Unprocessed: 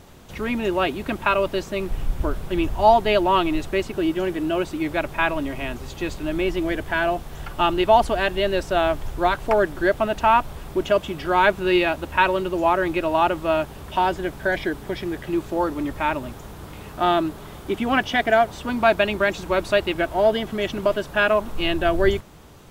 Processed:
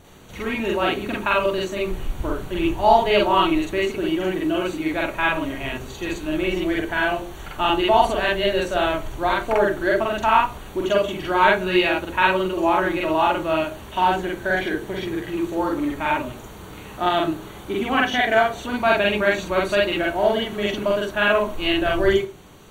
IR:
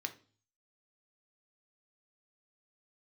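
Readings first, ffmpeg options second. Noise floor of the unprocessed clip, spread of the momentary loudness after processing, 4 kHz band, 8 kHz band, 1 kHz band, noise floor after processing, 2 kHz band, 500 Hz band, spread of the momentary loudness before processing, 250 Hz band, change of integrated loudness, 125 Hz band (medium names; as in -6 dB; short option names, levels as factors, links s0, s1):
-39 dBFS, 10 LU, +3.0 dB, +1.5 dB, +0.5 dB, -39 dBFS, +2.0 dB, 0.0 dB, 10 LU, +1.0 dB, +1.0 dB, -1.0 dB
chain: -filter_complex "[0:a]asuperstop=centerf=5100:order=20:qfactor=7.2,asplit=2[s0][s1];[1:a]atrim=start_sample=2205,asetrate=52920,aresample=44100,adelay=45[s2];[s1][s2]afir=irnorm=-1:irlink=0,volume=1.78[s3];[s0][s3]amix=inputs=2:normalize=0,volume=0.708"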